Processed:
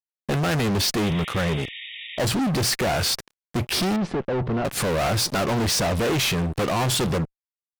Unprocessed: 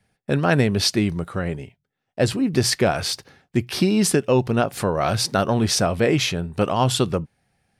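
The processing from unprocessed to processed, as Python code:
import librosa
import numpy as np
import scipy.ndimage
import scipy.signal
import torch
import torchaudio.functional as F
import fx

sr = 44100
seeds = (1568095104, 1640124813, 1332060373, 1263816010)

y = fx.fuzz(x, sr, gain_db=32.0, gate_db=-40.0)
y = fx.spec_paint(y, sr, seeds[0], shape='noise', start_s=1.03, length_s=1.16, low_hz=1800.0, high_hz=3800.0, level_db=-30.0)
y = fx.spacing_loss(y, sr, db_at_10k=36, at=(3.96, 4.65))
y = F.gain(torch.from_numpy(y), -7.5).numpy()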